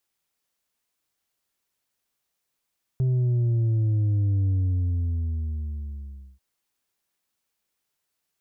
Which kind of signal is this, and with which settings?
sub drop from 130 Hz, over 3.39 s, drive 4 dB, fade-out 1.92 s, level -20 dB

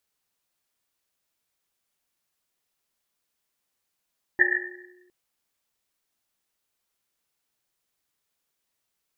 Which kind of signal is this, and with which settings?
Risset drum length 0.71 s, pitch 360 Hz, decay 1.43 s, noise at 1800 Hz, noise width 180 Hz, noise 80%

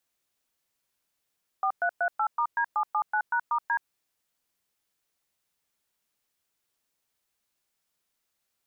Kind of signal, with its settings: DTMF "4338*D779#*D", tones 75 ms, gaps 0.113 s, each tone -25.5 dBFS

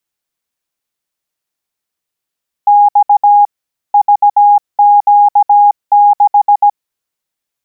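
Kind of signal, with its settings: Morse "X VQ6" 17 wpm 822 Hz -3 dBFS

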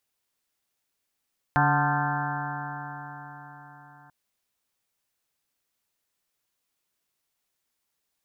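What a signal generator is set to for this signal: stretched partials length 2.54 s, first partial 143 Hz, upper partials -6/-20/-19/-1/-0.5/-4/-9.5/-5/-2.5/-9.5 dB, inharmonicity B 0.0019, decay 4.62 s, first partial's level -23.5 dB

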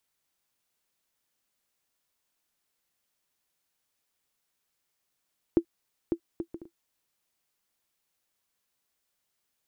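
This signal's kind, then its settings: bouncing ball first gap 0.55 s, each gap 0.51, 336 Hz, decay 79 ms -11 dBFS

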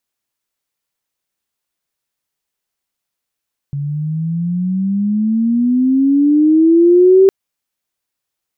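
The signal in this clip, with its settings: chirp logarithmic 140 Hz -> 390 Hz -18 dBFS -> -4 dBFS 3.56 s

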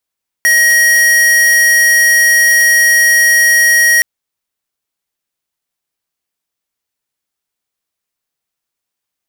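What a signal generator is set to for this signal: tone square 1890 Hz -8.5 dBFS 3.57 s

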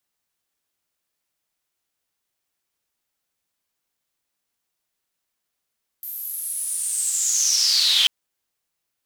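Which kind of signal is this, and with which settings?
swept filtered noise white, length 2.04 s bandpass, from 13000 Hz, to 3100 Hz, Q 8.4, linear, gain ramp +20 dB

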